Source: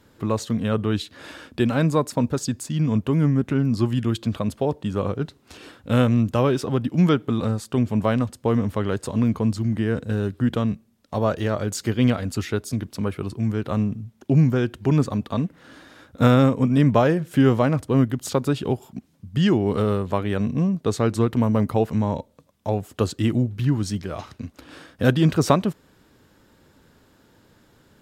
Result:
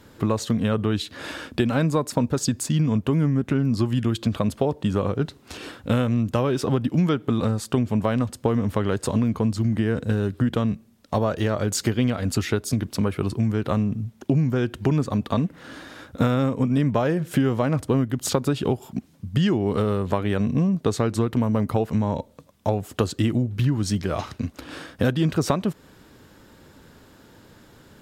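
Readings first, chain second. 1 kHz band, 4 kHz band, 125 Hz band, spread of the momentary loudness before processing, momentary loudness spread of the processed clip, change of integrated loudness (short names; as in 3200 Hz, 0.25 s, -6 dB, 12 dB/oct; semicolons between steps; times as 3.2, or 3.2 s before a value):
-1.5 dB, +0.5 dB, -1.0 dB, 10 LU, 8 LU, -1.5 dB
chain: compressor, threshold -24 dBFS, peak gain reduction 12.5 dB; gain +6 dB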